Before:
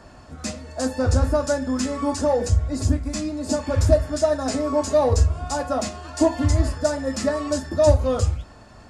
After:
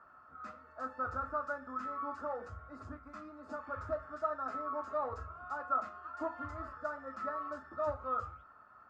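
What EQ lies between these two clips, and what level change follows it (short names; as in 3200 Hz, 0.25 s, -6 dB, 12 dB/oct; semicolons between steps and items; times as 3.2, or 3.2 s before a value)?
band-pass 1300 Hz, Q 16; tilt -3 dB/oct; +7.0 dB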